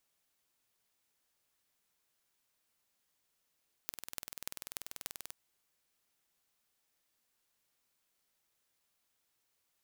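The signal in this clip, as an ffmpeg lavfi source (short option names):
-f lavfi -i "aevalsrc='0.316*eq(mod(n,2151),0)*(0.5+0.5*eq(mod(n,12906),0))':d=1.46:s=44100"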